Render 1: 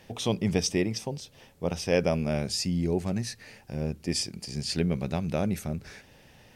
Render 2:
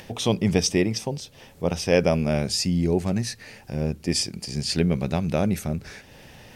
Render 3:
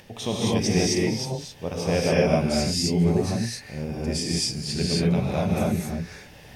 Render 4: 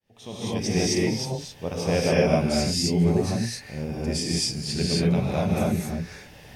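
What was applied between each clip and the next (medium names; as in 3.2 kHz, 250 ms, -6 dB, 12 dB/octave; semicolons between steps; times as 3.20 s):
upward compressor, threshold -45 dBFS; trim +5 dB
gated-style reverb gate 290 ms rising, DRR -6 dB; trim -6.5 dB
fade-in on the opening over 0.97 s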